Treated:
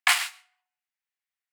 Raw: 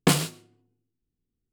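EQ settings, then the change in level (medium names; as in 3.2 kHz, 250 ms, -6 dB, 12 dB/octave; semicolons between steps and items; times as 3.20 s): steep high-pass 710 Hz 96 dB/octave; peaking EQ 2 kHz +12.5 dB 1 oct; -1.0 dB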